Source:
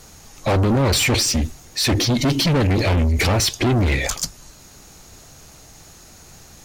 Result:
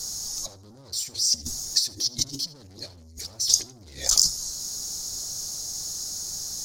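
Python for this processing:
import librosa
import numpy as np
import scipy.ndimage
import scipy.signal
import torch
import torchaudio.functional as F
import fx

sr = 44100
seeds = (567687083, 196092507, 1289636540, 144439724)

p1 = fx.over_compress(x, sr, threshold_db=-26.0, ratio=-0.5)
p2 = fx.high_shelf_res(p1, sr, hz=3600.0, db=13.0, q=3.0)
p3 = fx.hum_notches(p2, sr, base_hz=60, count=2)
p4 = p3 + fx.echo_feedback(p3, sr, ms=79, feedback_pct=25, wet_db=-20.0, dry=0)
y = p4 * librosa.db_to_amplitude(-12.5)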